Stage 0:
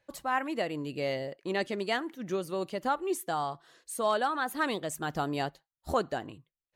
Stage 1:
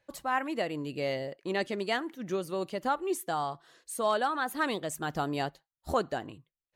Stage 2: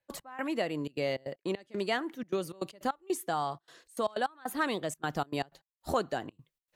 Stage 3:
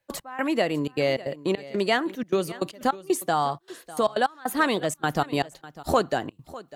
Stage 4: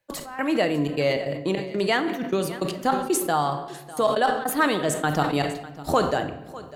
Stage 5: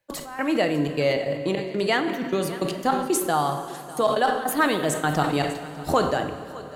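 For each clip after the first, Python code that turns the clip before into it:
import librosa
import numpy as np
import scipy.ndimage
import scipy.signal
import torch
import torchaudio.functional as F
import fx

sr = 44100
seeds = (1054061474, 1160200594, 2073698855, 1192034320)

y1 = x
y2 = fx.step_gate(y1, sr, bpm=155, pattern='.x..xxxxx.xx.x', floor_db=-24.0, edge_ms=4.5)
y2 = fx.band_squash(y2, sr, depth_pct=40)
y3 = y2 + 10.0 ** (-18.0 / 20.0) * np.pad(y2, (int(600 * sr / 1000.0), 0))[:len(y2)]
y3 = y3 * librosa.db_to_amplitude(8.0)
y4 = fx.room_shoebox(y3, sr, seeds[0], volume_m3=640.0, walls='mixed', distance_m=0.52)
y4 = fx.sustainer(y4, sr, db_per_s=73.0)
y5 = fx.rev_plate(y4, sr, seeds[1], rt60_s=4.0, hf_ratio=0.9, predelay_ms=0, drr_db=12.0)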